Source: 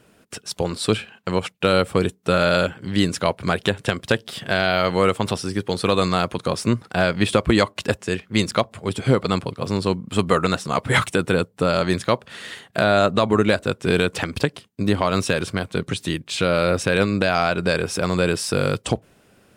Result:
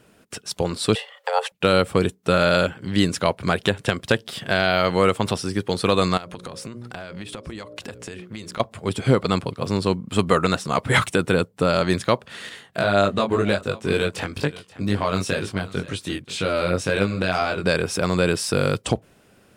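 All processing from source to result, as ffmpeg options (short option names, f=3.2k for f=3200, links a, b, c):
-filter_complex "[0:a]asettb=1/sr,asplit=3[a][b][c];[a]atrim=end=0.954[d];[b]atrim=start=0.95:end=1.52,asetpts=PTS-STARTPTS,afade=t=in:d=0.004:c=qsin,afade=t=out:st=0.566:d=0.004:c=qsin,afreqshift=350,acompressor=mode=upward:threshold=-40dB:ratio=2.5:attack=3.2:release=140:knee=2.83:detection=peak[e];[c]atrim=start=1.516[f];[d][e]acrossfade=d=0.004:c1=hsin:c2=qsin[g];[g][f]acrossfade=d=0.004:c1=qsin:c2=hsin,asettb=1/sr,asplit=3[h][i][j];[h]atrim=end=6.174[k];[i]atrim=start=6.17:end=8.6,asetpts=PTS-STARTPTS,afade=t=in:d=0.004:c=qsin,afade=t=out:st=2.426:d=0.004:c=qsin,bandreject=f=60:t=h:w=6,bandreject=f=120:t=h:w=6,bandreject=f=180:t=h:w=6,bandreject=f=240:t=h:w=6,bandreject=f=300:t=h:w=6,bandreject=f=360:t=h:w=6,bandreject=f=420:t=h:w=6,bandreject=f=480:t=h:w=6,bandreject=f=540:t=h:w=6,bandreject=f=600:t=h:w=6,acompressor=threshold=-30dB:ratio=16:attack=3.2:release=140:knee=1:detection=peak,aecho=1:1:873:0.075,atrim=end_sample=107163[l];[j]atrim=start=8.596[m];[k][l]acrossfade=d=0.004:c1=hsin:c2=qsin[n];[n][m]acrossfade=d=0.004:c1=qsin:c2=hsin,asettb=1/sr,asplit=3[o][p][q];[o]atrim=end=12.494[r];[p]atrim=start=12.49:end=17.64,asetpts=PTS-STARTPTS,afade=t=in:d=0.004:c=qsin,afade=t=out:st=5.146:d=0.004:c=qsin,aecho=1:1:531:0.119,atrim=end_sample=227115,flanger=delay=20:depth=2.1:speed=2[s];[q]atrim=start=17.636[t];[r][s]acrossfade=d=0.004:c1=hsin:c2=qsin[u];[u][t]acrossfade=d=0.004:c1=qsin:c2=hsin"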